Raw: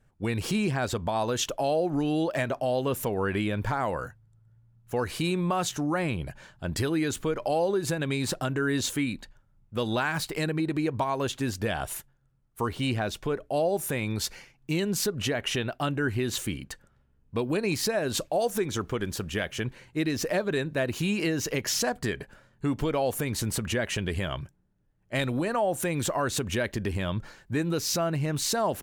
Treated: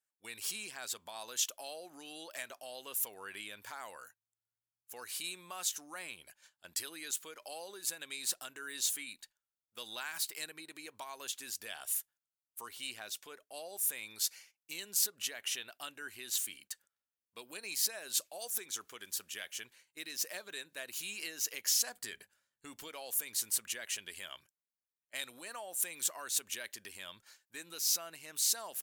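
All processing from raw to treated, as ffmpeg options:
ffmpeg -i in.wav -filter_complex "[0:a]asettb=1/sr,asplit=3[link_01][link_02][link_03];[link_01]atrim=end=21.894[link_04];[link_02]atrim=start=21.89:end=22.88,asetpts=PTS-STARTPTS,afade=type=in:duration=0.004:curve=qsin,afade=type=out:start_time=0.986:duration=0.004:curve=qsin,lowshelf=frequency=190:gain=9.5,bandreject=frequency=97.75:width_type=h:width=4,bandreject=frequency=195.5:width_type=h:width=4[link_05];[link_03]atrim=start=22.876[link_06];[link_04][link_05]acrossfade=duration=0.004:curve1=hsin:curve2=qsin[link_07];[link_07][link_06]acrossfade=duration=0.004:curve1=qsin:curve2=hsin,aderivative,agate=range=-9dB:threshold=-58dB:ratio=16:detection=peak,equalizer=frequency=140:width_type=o:width=0.33:gain=-8.5" out.wav

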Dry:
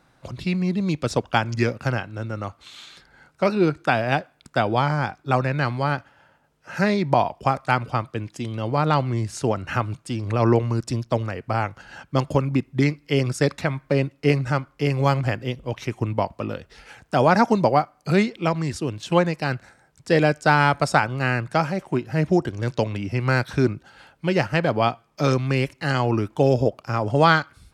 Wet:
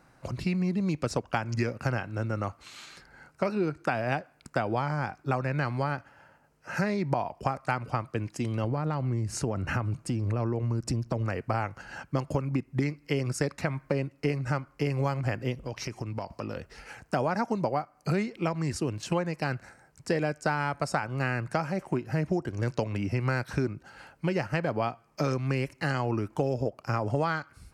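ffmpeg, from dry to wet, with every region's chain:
ffmpeg -i in.wav -filter_complex "[0:a]asettb=1/sr,asplit=3[link_01][link_02][link_03];[link_01]atrim=end=8.644[link_04];[link_02]atrim=start=8.64:end=11.26,asetpts=PTS-STARTPTS,afade=type=in:duration=0.004:curve=qsin,afade=type=out:start_time=2.616:duration=0.004:curve=qsin,lowshelf=frequency=470:gain=7.5,acompressor=threshold=-26dB:ratio=2.5:attack=3.2:release=140:knee=1:detection=peak[link_05];[link_03]atrim=start=11.256[link_06];[link_04][link_05]acrossfade=duration=0.004:curve1=hsin:curve2=qsin[link_07];[link_07][link_06]acrossfade=duration=0.004:curve1=qsin:curve2=hsin,asettb=1/sr,asplit=3[link_08][link_09][link_10];[link_08]atrim=end=15.654[link_11];[link_09]atrim=start=15.65:end=16.56,asetpts=PTS-STARTPTS,afade=type=in:duration=0.004:curve=qsin,afade=type=out:start_time=0.906:duration=0.004:curve=qsin,asoftclip=type=hard:threshold=-11dB,equalizer=frequency=5000:width=2.2:gain=10.5,acompressor=threshold=-30dB:ratio=8:attack=3.2:release=140:knee=1:detection=peak[link_12];[link_10]atrim=start=16.556[link_13];[link_11][link_12]acrossfade=duration=0.004:curve1=hsin:curve2=qsin[link_14];[link_14][link_13]acrossfade=duration=0.004:curve1=qsin:curve2=hsin,equalizer=frequency=3500:width=4:gain=-11,acompressor=threshold=-25dB:ratio=5" out.wav

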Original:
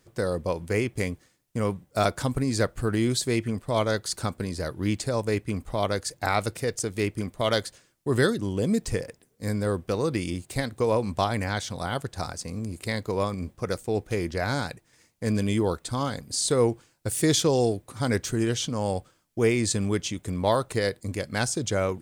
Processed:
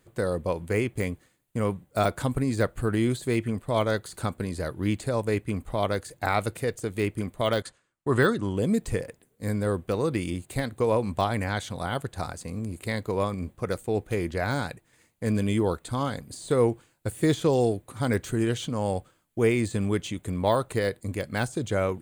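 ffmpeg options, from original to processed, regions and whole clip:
ffmpeg -i in.wav -filter_complex "[0:a]asettb=1/sr,asplit=3[link_01][link_02][link_03];[link_01]atrim=end=7.624[link_04];[link_02]atrim=start=7.62:end=8.56,asetpts=PTS-STARTPTS,afade=type=in:duration=0.004:curve=qsin,afade=type=out:start_time=0.936:duration=0.004:curve=qsin,lowpass=frequency=9500:width=0.5412,lowpass=frequency=9500:width=1.3066,agate=range=-12dB:threshold=-48dB:ratio=16:release=100:detection=peak,equalizer=frequency=1200:width=1.3:gain=7[link_05];[link_03]atrim=start=8.556[link_06];[link_04][link_05]acrossfade=duration=0.004:curve1=hsin:curve2=qsin[link_07];[link_07][link_06]acrossfade=duration=0.004:curve1=qsin:curve2=hsin,deesser=0.65,equalizer=frequency=5400:width=3:gain=-11" out.wav

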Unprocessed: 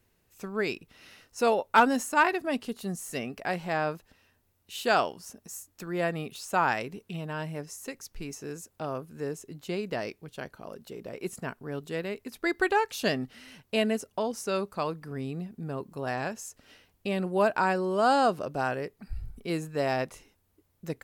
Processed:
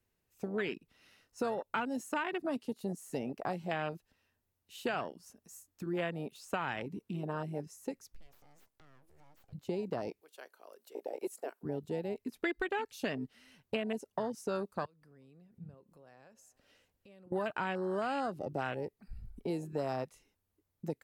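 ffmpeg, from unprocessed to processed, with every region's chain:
ffmpeg -i in.wav -filter_complex "[0:a]asettb=1/sr,asplit=3[link_01][link_02][link_03];[link_01]atrim=end=8.164[link_04];[link_02]atrim=start=8.16:end=9.53,asetpts=PTS-STARTPTS,afade=type=in:duration=0.004:curve=qsin,afade=type=out:start_time=1.366:duration=0.004:curve=qsin,acompressor=threshold=-47dB:ratio=4:attack=3.2:release=140:knee=1:detection=peak,aeval=exprs='abs(val(0))':channel_layout=same[link_05];[link_03]atrim=start=9.526[link_06];[link_04][link_05]acrossfade=duration=0.004:curve1=hsin:curve2=qsin[link_07];[link_07][link_06]acrossfade=duration=0.004:curve1=qsin:curve2=hsin,asettb=1/sr,asplit=3[link_08][link_09][link_10];[link_08]atrim=end=10.214[link_11];[link_09]atrim=start=10.21:end=11.63,asetpts=PTS-STARTPTS,afade=type=in:duration=0.004:curve=qsin,afade=type=out:start_time=1.416:duration=0.004:curve=qsin,highpass=frequency=380:width=0.5412,highpass=frequency=380:width=1.3066,highshelf=frequency=8400:gain=9.5[link_12];[link_10]atrim=start=11.626[link_13];[link_11][link_12]acrossfade=duration=0.004:curve1=hsin:curve2=qsin[link_14];[link_14][link_13]acrossfade=duration=0.004:curve1=qsin:curve2=hsin,asettb=1/sr,asplit=3[link_15][link_16][link_17];[link_15]atrim=end=14.854[link_18];[link_16]atrim=start=14.85:end=17.32,asetpts=PTS-STARTPTS,afade=type=in:duration=0.004:curve=qsin,afade=type=out:start_time=2.466:duration=0.004:curve=qsin,equalizer=frequency=530:width=5.5:gain=7.5,acompressor=threshold=-50dB:ratio=3:attack=3.2:release=140:knee=1:detection=peak,aecho=1:1:365:0.0794,atrim=end_sample=108927[link_19];[link_17]atrim=start=17.316[link_20];[link_18][link_19]acrossfade=duration=0.004:curve1=hsin:curve2=qsin[link_21];[link_21][link_20]acrossfade=duration=0.004:curve1=qsin:curve2=hsin,afwtdn=0.0282,alimiter=limit=-18.5dB:level=0:latency=1:release=281,acrossover=split=240|2300[link_22][link_23][link_24];[link_22]acompressor=threshold=-50dB:ratio=4[link_25];[link_23]acompressor=threshold=-41dB:ratio=4[link_26];[link_24]acompressor=threshold=-47dB:ratio=4[link_27];[link_25][link_26][link_27]amix=inputs=3:normalize=0,volume=5dB" out.wav

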